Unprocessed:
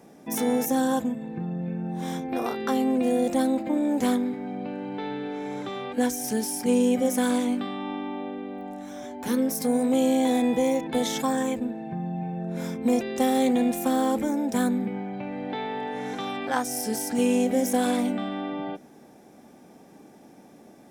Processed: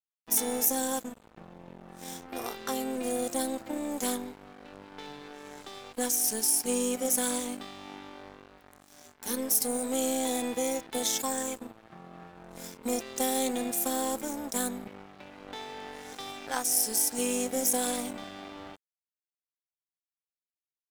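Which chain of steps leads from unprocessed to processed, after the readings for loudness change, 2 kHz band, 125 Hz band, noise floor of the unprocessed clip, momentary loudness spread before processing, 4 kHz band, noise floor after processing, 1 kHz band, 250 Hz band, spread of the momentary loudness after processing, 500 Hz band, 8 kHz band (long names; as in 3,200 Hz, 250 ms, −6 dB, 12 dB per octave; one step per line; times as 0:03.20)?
−2.5 dB, −5.5 dB, −15.5 dB, −51 dBFS, 11 LU, 0.0 dB, below −85 dBFS, −7.0 dB, −11.0 dB, 20 LU, −7.0 dB, +6.5 dB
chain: bass and treble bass −8 dB, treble +13 dB
dead-zone distortion −35.5 dBFS
level −4.5 dB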